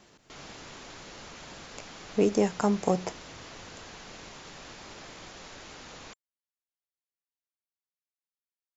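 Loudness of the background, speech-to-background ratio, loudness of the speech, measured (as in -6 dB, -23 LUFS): -45.5 LUFS, 18.0 dB, -27.5 LUFS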